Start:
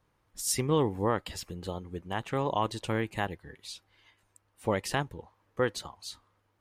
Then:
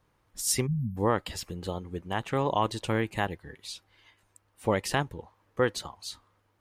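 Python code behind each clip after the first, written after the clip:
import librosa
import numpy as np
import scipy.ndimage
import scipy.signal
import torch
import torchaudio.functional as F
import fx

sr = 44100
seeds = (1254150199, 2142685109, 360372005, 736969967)

y = fx.spec_erase(x, sr, start_s=0.67, length_s=0.3, low_hz=240.0, high_hz=11000.0)
y = F.gain(torch.from_numpy(y), 2.5).numpy()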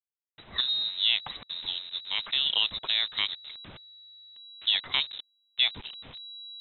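y = fx.delta_hold(x, sr, step_db=-39.0)
y = fx.freq_invert(y, sr, carrier_hz=3900)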